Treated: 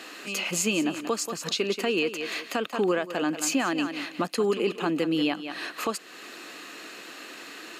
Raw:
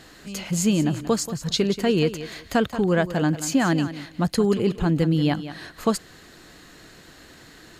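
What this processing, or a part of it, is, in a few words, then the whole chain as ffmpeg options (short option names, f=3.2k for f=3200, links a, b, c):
laptop speaker: -af "highpass=f=260:w=0.5412,highpass=f=260:w=1.3066,equalizer=f=1.2k:t=o:w=0.22:g=6.5,equalizer=f=2.6k:t=o:w=0.3:g=11,alimiter=limit=-20.5dB:level=0:latency=1:release=385,volume=4.5dB"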